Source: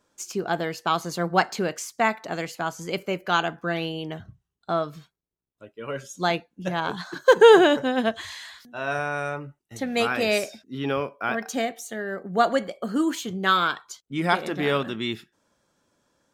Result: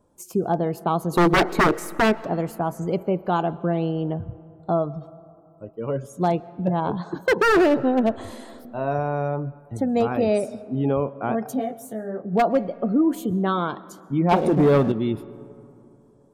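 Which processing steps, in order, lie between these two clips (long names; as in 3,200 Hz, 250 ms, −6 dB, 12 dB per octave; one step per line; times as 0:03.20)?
low-shelf EQ 160 Hz +9 dB
gate on every frequency bin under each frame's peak −30 dB strong
flat-topped bell 3,100 Hz −15.5 dB 2.7 octaves
0:14.31–0:14.92: leveller curve on the samples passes 2
in parallel at −1 dB: downward compressor 8 to 1, threshold −27 dBFS, peak gain reduction 18.5 dB
0:01.13–0:02.15: on the sum: hollow resonant body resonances 370/1,500/2,200/3,800 Hz, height 17 dB, ringing for 20 ms
wave folding −11 dBFS
on a send at −20 dB: convolution reverb RT60 2.9 s, pre-delay 90 ms
0:11.54–0:12.32: on the sum: micro pitch shift up and down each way 18 cents → 33 cents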